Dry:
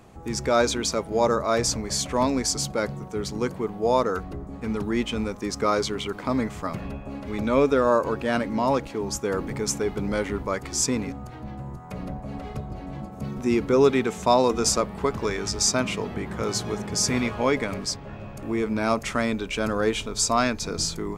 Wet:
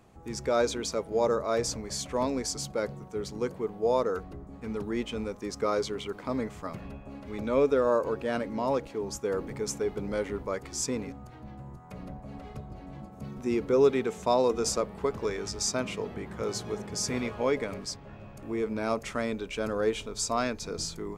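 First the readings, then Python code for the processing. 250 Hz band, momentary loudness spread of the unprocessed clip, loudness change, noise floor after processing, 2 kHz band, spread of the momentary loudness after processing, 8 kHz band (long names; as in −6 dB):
−7.0 dB, 14 LU, −5.0 dB, −47 dBFS, −8.0 dB, 17 LU, −8.0 dB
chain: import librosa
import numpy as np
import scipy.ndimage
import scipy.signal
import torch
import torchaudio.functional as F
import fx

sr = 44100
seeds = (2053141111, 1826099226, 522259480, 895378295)

y = fx.dynamic_eq(x, sr, hz=470.0, q=1.9, threshold_db=-36.0, ratio=4.0, max_db=6)
y = y * librosa.db_to_amplitude(-8.0)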